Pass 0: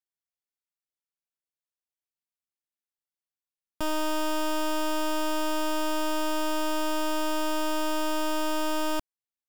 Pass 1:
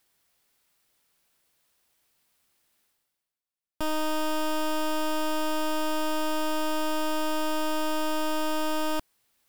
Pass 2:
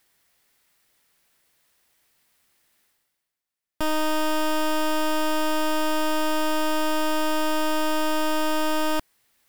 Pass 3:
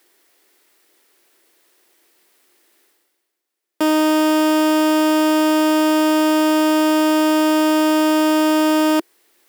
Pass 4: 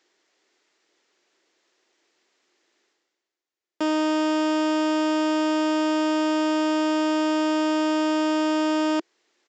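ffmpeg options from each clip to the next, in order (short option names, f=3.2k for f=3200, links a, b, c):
-af "equalizer=f=6.6k:w=3.2:g=-3,areverse,acompressor=mode=upward:threshold=-51dB:ratio=2.5,areverse"
-af "equalizer=f=1.9k:t=o:w=0.41:g=4.5,volume=4dB"
-af "aeval=exprs='clip(val(0),-1,0.0447)':c=same,highpass=f=350:t=q:w=4,volume=7dB"
-af "aresample=16000,aresample=44100,volume=-7dB"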